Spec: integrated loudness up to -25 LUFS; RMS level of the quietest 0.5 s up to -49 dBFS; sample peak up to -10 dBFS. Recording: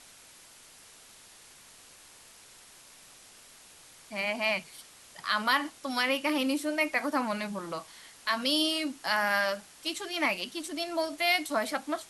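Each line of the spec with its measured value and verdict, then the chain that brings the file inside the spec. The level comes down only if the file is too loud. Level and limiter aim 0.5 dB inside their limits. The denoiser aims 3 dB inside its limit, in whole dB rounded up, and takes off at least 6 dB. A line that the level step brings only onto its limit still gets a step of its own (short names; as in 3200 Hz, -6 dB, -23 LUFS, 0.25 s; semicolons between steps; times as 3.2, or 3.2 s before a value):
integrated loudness -29.5 LUFS: OK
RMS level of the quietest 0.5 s -54 dBFS: OK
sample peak -12.5 dBFS: OK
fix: none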